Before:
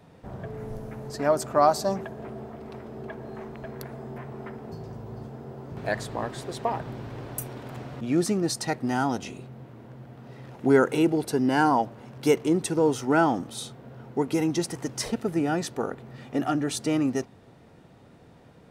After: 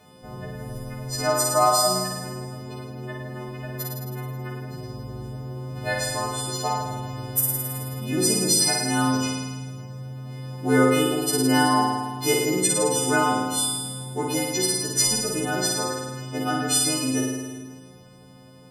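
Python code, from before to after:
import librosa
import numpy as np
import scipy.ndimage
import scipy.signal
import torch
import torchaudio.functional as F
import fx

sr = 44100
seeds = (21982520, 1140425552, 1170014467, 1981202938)

y = fx.freq_snap(x, sr, grid_st=3)
y = fx.room_flutter(y, sr, wall_m=9.2, rt60_s=1.4)
y = fx.dynamic_eq(y, sr, hz=210.0, q=0.96, threshold_db=-34.0, ratio=4.0, max_db=-5)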